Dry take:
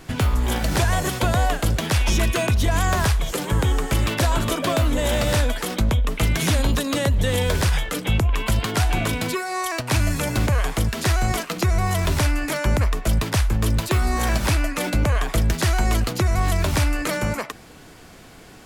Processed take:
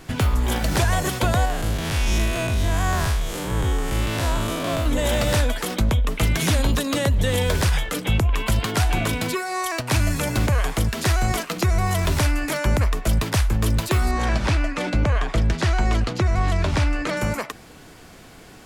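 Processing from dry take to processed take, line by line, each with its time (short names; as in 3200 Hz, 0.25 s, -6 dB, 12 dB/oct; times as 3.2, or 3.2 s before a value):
1.45–4.86 time blur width 0.128 s
14.11–17.17 air absorption 88 m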